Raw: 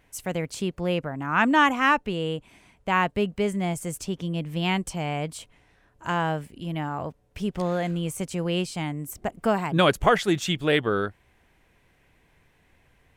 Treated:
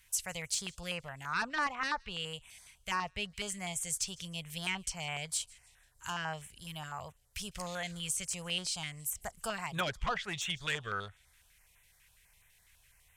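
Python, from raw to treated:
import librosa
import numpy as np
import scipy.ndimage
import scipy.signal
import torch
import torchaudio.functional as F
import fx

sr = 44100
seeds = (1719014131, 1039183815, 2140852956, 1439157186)

p1 = fx.tone_stack(x, sr, knobs='10-0-10')
p2 = fx.env_lowpass_down(p1, sr, base_hz=1700.0, full_db=-27.0)
p3 = fx.high_shelf(p2, sr, hz=5100.0, db=12.0)
p4 = fx.cheby_harmonics(p3, sr, harmonics=(5,), levels_db=(-10,), full_scale_db=-14.0)
p5 = p4 + fx.echo_wet_highpass(p4, sr, ms=154, feedback_pct=42, hz=3300.0, wet_db=-23.5, dry=0)
p6 = fx.filter_held_notch(p5, sr, hz=12.0, low_hz=670.0, high_hz=4700.0)
y = p6 * 10.0 ** (-6.5 / 20.0)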